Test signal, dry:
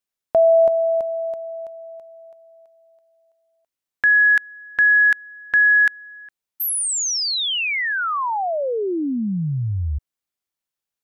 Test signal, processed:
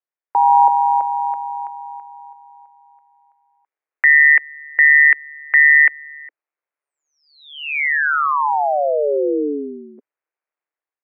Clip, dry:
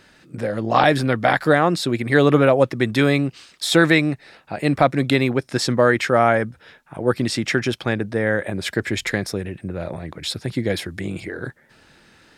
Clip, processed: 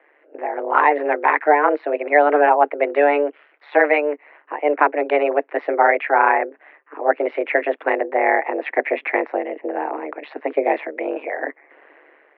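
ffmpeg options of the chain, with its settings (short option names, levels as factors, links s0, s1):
-af "highpass=f=150:t=q:w=0.5412,highpass=f=150:t=q:w=1.307,lowpass=f=2100:t=q:w=0.5176,lowpass=f=2100:t=q:w=0.7071,lowpass=f=2100:t=q:w=1.932,afreqshift=220,aeval=exprs='val(0)*sin(2*PI*73*n/s)':c=same,dynaudnorm=f=180:g=5:m=2.51"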